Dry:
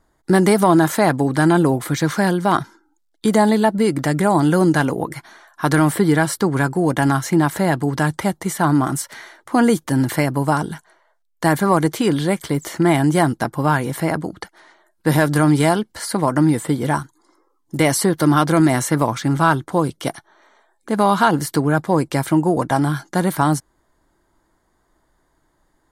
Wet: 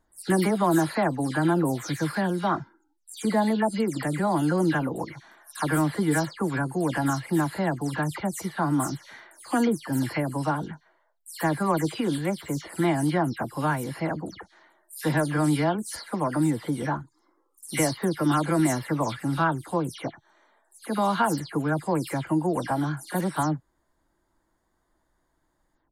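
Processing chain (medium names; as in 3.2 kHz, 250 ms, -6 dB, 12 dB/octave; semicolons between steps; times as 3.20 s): delay that grows with frequency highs early, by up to 162 ms; trim -8 dB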